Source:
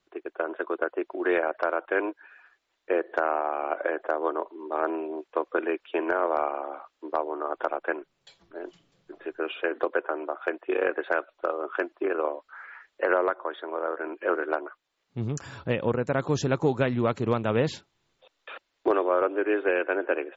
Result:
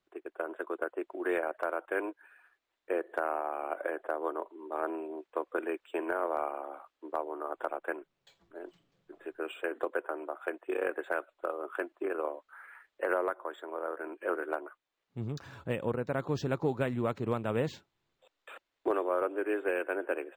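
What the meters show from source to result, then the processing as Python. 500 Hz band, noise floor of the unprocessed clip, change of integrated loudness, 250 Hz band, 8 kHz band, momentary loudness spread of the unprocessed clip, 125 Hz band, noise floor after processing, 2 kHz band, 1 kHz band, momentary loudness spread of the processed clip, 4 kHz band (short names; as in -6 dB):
-6.5 dB, -77 dBFS, -6.5 dB, -6.5 dB, n/a, 14 LU, -6.5 dB, -84 dBFS, -7.0 dB, -6.5 dB, 14 LU, -8.5 dB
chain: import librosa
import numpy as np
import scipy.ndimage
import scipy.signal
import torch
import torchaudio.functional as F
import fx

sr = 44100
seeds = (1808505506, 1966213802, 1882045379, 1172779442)

y = np.interp(np.arange(len(x)), np.arange(len(x))[::4], x[::4])
y = y * librosa.db_to_amplitude(-6.5)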